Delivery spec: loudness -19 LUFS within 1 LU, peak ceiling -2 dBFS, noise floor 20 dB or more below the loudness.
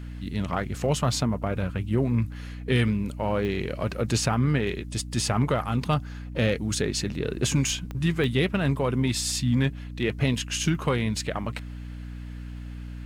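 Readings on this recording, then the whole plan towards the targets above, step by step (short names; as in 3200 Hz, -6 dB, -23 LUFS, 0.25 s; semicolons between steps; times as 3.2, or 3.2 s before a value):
clicks 4; hum 60 Hz; harmonics up to 300 Hz; hum level -35 dBFS; loudness -26.5 LUFS; peak -10.0 dBFS; loudness target -19.0 LUFS
-> de-click; de-hum 60 Hz, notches 5; gain +7.5 dB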